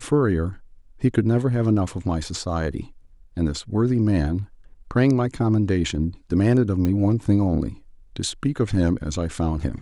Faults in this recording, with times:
0:06.85: click −13 dBFS

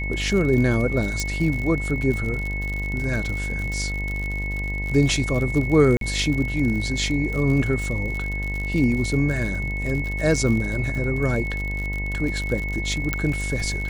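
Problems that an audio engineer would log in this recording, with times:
mains buzz 50 Hz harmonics 21 −28 dBFS
surface crackle 60 per second −27 dBFS
whistle 2,200 Hz −29 dBFS
0:01.20: click
0:05.97–0:06.01: drop-out 42 ms
0:13.13: click −8 dBFS

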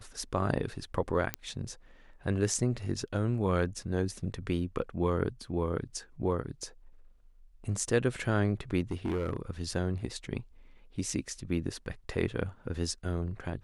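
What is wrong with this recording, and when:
0:01.34: click −14 dBFS
0:08.82–0:09.37: clipping −27.5 dBFS

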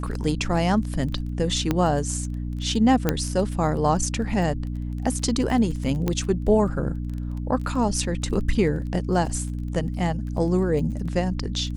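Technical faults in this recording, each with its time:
surface crackle 17 per second −31 dBFS
mains hum 60 Hz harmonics 5 −29 dBFS
0:01.71: click −9 dBFS
0:03.09: click −6 dBFS
0:06.08: click −11 dBFS

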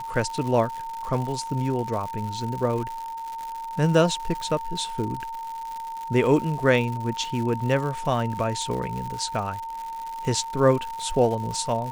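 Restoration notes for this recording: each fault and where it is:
surface crackle 180 per second −31 dBFS
whistle 910 Hz −31 dBFS

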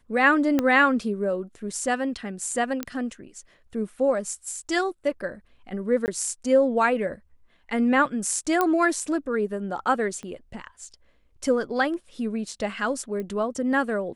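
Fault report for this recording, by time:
0:00.59: click −10 dBFS
0:02.83: click −14 dBFS
0:06.06–0:06.08: drop-out 19 ms
0:08.61: click −9 dBFS
0:10.23: click −26 dBFS
0:13.20: click −22 dBFS

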